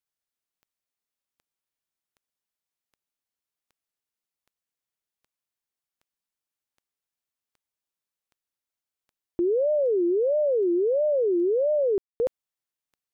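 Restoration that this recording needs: de-click; room tone fill 11.98–12.2

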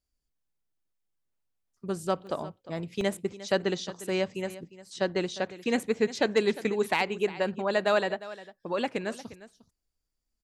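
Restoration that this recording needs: clip repair -14 dBFS; interpolate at 2.27/3.01, 1.2 ms; inverse comb 0.354 s -16.5 dB

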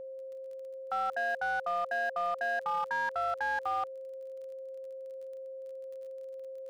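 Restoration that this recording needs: clip repair -26.5 dBFS; de-click; notch 530 Hz, Q 30

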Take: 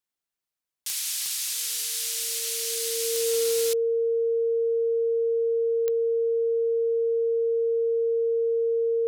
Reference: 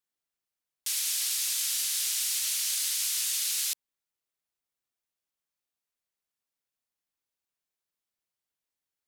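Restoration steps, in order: clip repair -19.5 dBFS; de-click; notch 460 Hz, Q 30

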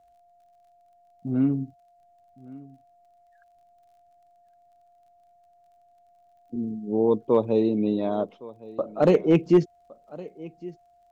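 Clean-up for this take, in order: clip repair -10 dBFS; de-click; notch 700 Hz, Q 30; inverse comb 1.113 s -20.5 dB

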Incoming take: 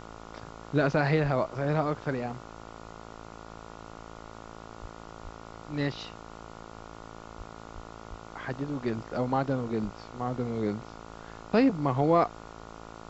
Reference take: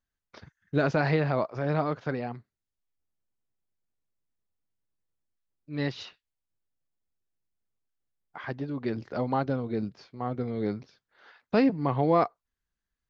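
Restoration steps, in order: de-hum 55.4 Hz, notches 26; de-plosive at 1.22/4.81/5.23/7.37/7.74/8.09/9.83; noise print and reduce 30 dB

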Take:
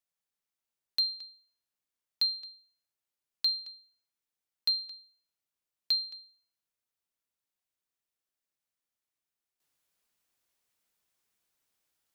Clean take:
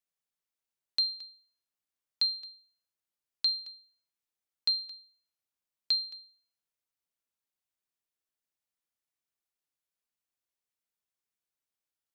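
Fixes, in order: clip repair -21 dBFS; gain 0 dB, from 9.6 s -10.5 dB

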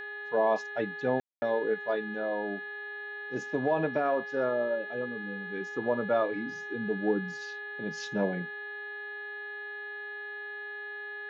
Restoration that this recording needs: de-hum 412 Hz, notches 10; notch 1700 Hz, Q 30; room tone fill 1.2–1.42

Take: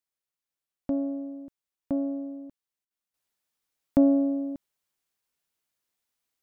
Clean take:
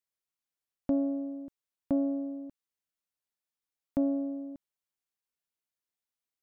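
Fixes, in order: interpolate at 2.85, 56 ms; gain 0 dB, from 3.14 s -8.5 dB

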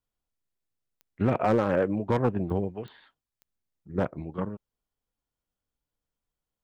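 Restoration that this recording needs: clip repair -15 dBFS; de-click

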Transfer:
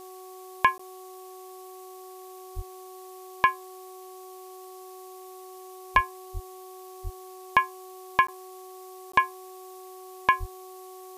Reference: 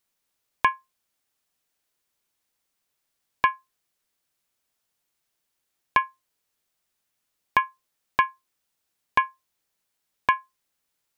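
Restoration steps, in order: de-hum 372.5 Hz, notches 3; de-plosive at 2.55/5.94/6.33/7.03/10.39; interpolate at 0.78/8.27/9.12, 14 ms; denoiser 30 dB, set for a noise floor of -45 dBFS

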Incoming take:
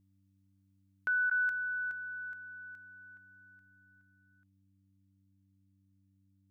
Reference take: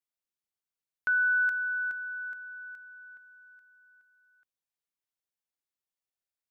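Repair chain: de-hum 96.9 Hz, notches 3; interpolate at 1.3, 10 ms; gain correction +4.5 dB, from 1.07

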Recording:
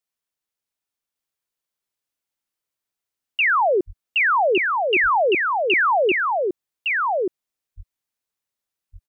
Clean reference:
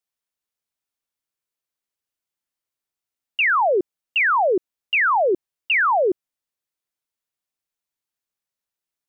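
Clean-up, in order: 3.86–3.98 HPF 140 Hz 24 dB/oct; 7.76–7.88 HPF 140 Hz 24 dB/oct; inverse comb 1.16 s -3.5 dB

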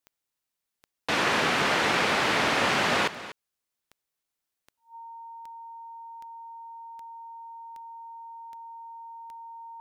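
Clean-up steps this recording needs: de-click; notch 920 Hz, Q 30; inverse comb 0.243 s -15 dB

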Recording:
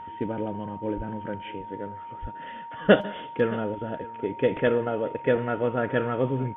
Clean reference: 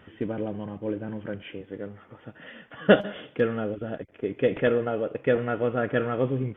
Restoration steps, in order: notch 930 Hz, Q 30; 0.96–1.08 HPF 140 Hz 24 dB/oct; 2.21–2.33 HPF 140 Hz 24 dB/oct; inverse comb 0.621 s -20 dB

